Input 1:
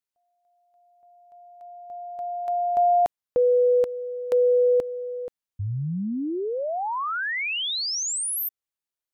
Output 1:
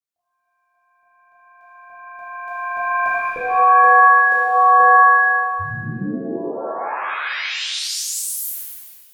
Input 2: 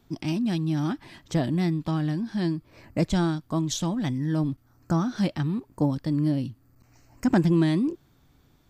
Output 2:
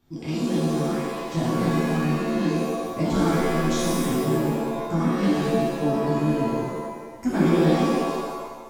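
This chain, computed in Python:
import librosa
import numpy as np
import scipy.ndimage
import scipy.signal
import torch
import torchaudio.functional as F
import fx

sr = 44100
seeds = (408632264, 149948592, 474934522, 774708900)

y = fx.rev_shimmer(x, sr, seeds[0], rt60_s=1.3, semitones=7, shimmer_db=-2, drr_db=-7.0)
y = F.gain(torch.from_numpy(y), -8.0).numpy()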